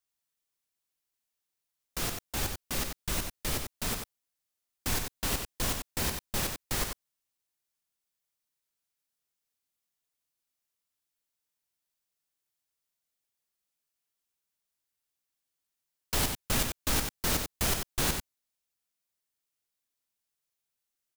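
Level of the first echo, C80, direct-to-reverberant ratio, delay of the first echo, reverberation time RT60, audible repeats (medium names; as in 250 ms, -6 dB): -6.0 dB, no reverb, no reverb, 92 ms, no reverb, 1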